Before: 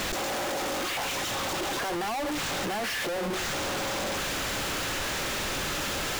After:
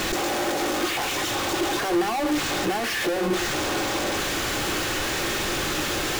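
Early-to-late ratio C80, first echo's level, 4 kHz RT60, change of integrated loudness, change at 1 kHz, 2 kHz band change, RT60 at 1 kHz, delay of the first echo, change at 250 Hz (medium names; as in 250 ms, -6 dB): 23.0 dB, no echo, 0.55 s, +5.0 dB, +4.5 dB, +4.5 dB, 0.40 s, no echo, +8.5 dB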